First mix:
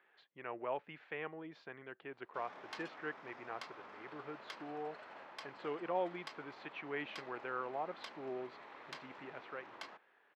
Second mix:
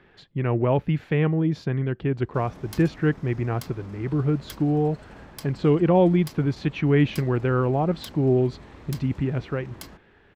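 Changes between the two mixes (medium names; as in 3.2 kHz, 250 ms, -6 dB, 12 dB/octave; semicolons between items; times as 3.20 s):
speech +10.5 dB; master: remove band-pass 720–2800 Hz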